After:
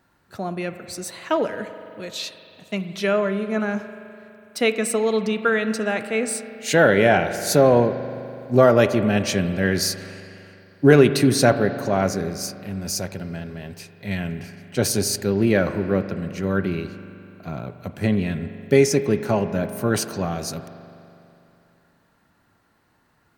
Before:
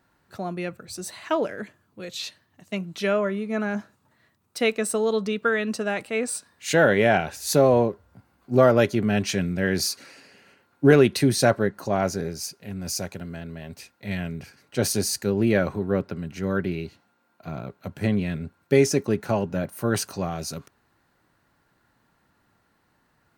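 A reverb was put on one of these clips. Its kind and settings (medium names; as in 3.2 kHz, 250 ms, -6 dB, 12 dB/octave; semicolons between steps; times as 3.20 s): spring tank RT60 2.9 s, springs 41 ms, chirp 50 ms, DRR 10 dB; trim +2.5 dB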